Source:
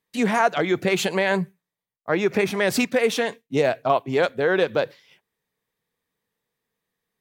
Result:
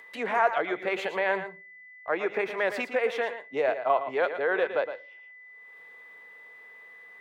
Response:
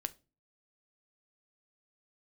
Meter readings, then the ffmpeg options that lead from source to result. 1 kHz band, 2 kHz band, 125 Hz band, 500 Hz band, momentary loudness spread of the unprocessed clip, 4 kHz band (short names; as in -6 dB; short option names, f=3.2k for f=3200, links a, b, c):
-3.0 dB, -4.0 dB, under -20 dB, -5.5 dB, 6 LU, -11.5 dB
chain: -filter_complex "[0:a]acrossover=split=400 2700:gain=0.0794 1 0.1[a][b][c];[a][b][c]amix=inputs=3:normalize=0,asplit=2[d][e];[1:a]atrim=start_sample=2205,adelay=114[f];[e][f]afir=irnorm=-1:irlink=0,volume=-9dB[g];[d][g]amix=inputs=2:normalize=0,acompressor=mode=upward:threshold=-34dB:ratio=2.5,aeval=exprs='val(0)+0.00631*sin(2*PI*2000*n/s)':c=same,volume=-3dB"